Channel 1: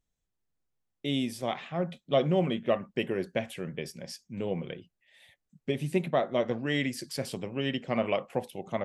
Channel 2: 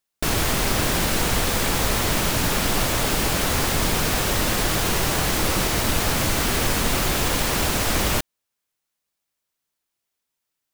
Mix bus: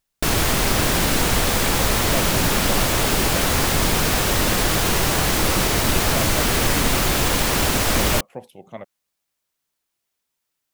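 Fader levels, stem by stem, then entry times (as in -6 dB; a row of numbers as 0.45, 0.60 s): -4.0, +2.5 dB; 0.00, 0.00 s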